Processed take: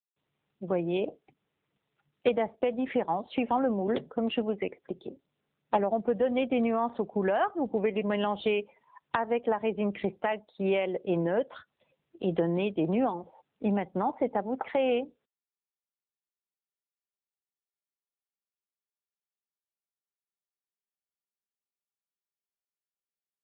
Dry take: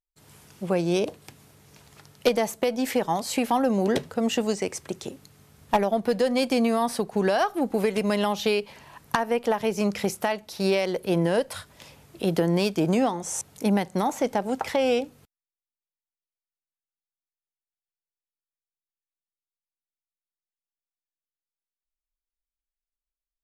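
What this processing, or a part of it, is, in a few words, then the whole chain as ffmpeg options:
mobile call with aggressive noise cancelling: -af "highpass=170,afftdn=nr=23:nf=-39,volume=0.708" -ar 8000 -c:a libopencore_amrnb -b:a 7950

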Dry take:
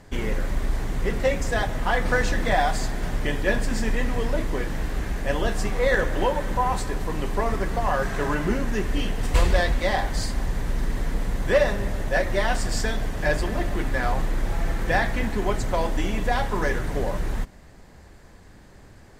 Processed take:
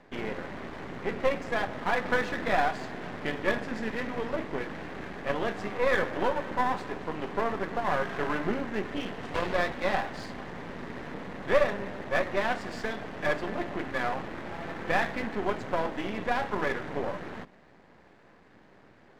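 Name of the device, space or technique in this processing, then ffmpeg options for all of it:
crystal radio: -af "highpass=200,lowpass=2700,aeval=exprs='if(lt(val(0),0),0.251*val(0),val(0))':c=same"

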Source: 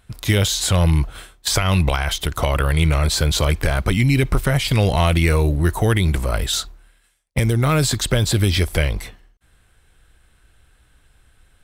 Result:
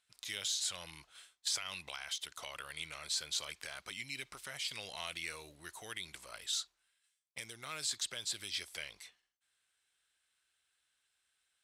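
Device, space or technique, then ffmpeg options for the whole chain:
piezo pickup straight into a mixer: -af "lowpass=6000,aderivative,volume=0.398"

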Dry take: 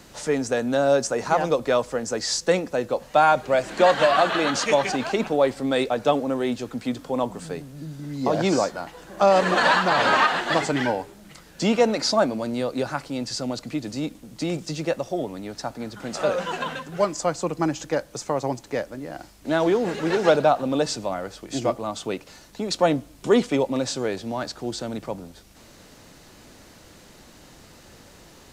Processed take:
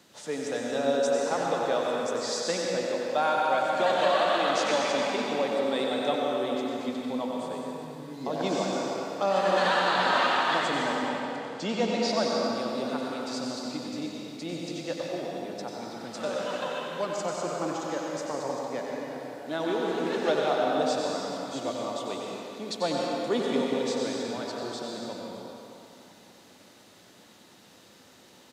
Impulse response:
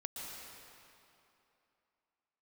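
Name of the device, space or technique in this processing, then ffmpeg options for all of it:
PA in a hall: -filter_complex "[0:a]asettb=1/sr,asplit=3[s0][s1][s2];[s0]atrim=end=10.944[s3];[s1]atrim=start=10.94:end=12.11,asetpts=PTS-STARTPTS,afade=t=in:d=0.004:c=qsin,afade=t=out:st=1.166:d=0.004:c=qsin,lowpass=7900[s4];[s2]atrim=start=12.106[s5];[s3][s4]acrossfade=d=0.004:c1=hsin:c2=qsin[s6];[s6][s5]acrossfade=d=0.004:c1=qsin:c2=hsin,highpass=160,equalizer=f=3500:t=o:w=0.41:g=5,aecho=1:1:93:0.422[s7];[1:a]atrim=start_sample=2205[s8];[s7][s8]afir=irnorm=-1:irlink=0,volume=0.531"

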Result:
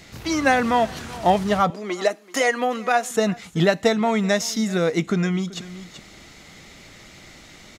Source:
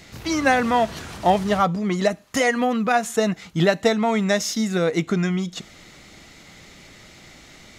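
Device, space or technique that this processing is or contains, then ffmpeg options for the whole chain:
ducked delay: -filter_complex "[0:a]asplit=3[s0][s1][s2];[s1]adelay=383,volume=0.473[s3];[s2]apad=whole_len=360045[s4];[s3][s4]sidechaincompress=threshold=0.0178:ratio=5:attack=9.2:release=645[s5];[s0][s5]amix=inputs=2:normalize=0,asettb=1/sr,asplit=3[s6][s7][s8];[s6]atrim=end=1.704[s9];[s7]atrim=start=1.7:end=3.11,asetpts=PTS-STARTPTS,afade=t=in:d=0.004:c=qsin,afade=t=out:st=1.406:d=0.004:c=qsin,highpass=f=290:w=0.5412,highpass=f=290:w=1.3066[s10];[s8]atrim=start=3.106[s11];[s9][s10]acrossfade=d=0.004:c1=hsin:c2=qsin[s12];[s12][s11]acrossfade=d=0.004:c1=qsin:c2=hsin"

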